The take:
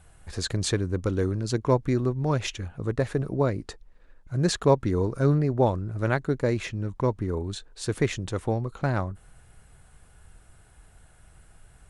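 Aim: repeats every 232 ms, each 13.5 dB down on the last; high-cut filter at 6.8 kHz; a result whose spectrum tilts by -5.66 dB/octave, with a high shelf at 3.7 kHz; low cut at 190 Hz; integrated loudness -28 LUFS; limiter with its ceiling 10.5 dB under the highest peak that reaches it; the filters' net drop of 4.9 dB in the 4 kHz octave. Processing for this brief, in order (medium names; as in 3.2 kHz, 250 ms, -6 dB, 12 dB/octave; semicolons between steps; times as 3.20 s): high-pass 190 Hz; low-pass 6.8 kHz; treble shelf 3.7 kHz +3.5 dB; peaking EQ 4 kHz -7.5 dB; peak limiter -17 dBFS; feedback delay 232 ms, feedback 21%, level -13.5 dB; trim +3.5 dB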